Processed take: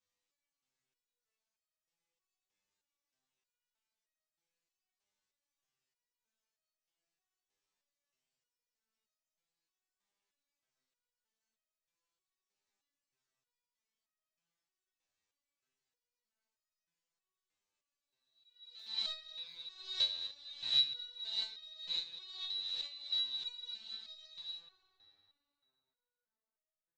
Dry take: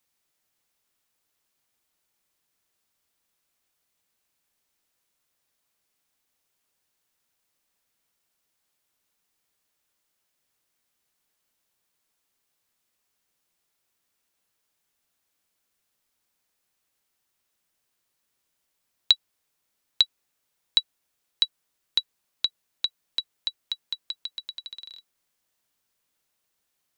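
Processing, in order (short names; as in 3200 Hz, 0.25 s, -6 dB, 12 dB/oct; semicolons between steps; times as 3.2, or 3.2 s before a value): spectral swells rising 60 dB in 0.89 s; notch 1400 Hz, Q 18; frequency-shifting echo 0.245 s, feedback 48%, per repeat -82 Hz, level -15.5 dB; chorus voices 4, 0.12 Hz, delay 14 ms, depth 1.8 ms; steep low-pass 7900 Hz, from 24.57 s 1700 Hz; reverb RT60 3.4 s, pre-delay 3 ms, DRR 7 dB; stuck buffer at 18.77/19.45, samples 1024, times 3; stepped resonator 3.2 Hz 100–630 Hz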